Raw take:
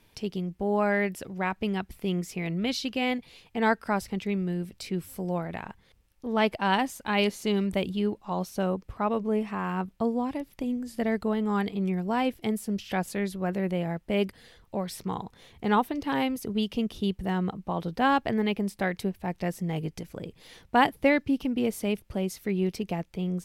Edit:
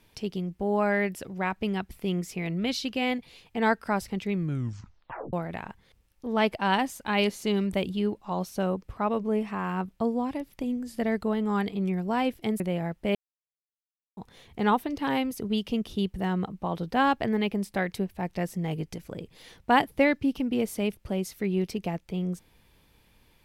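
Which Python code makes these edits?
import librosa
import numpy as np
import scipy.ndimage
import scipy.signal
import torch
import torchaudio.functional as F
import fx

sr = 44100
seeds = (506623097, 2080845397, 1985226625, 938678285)

y = fx.edit(x, sr, fx.tape_stop(start_s=4.33, length_s=1.0),
    fx.cut(start_s=12.6, length_s=1.05),
    fx.silence(start_s=14.2, length_s=1.02), tone=tone)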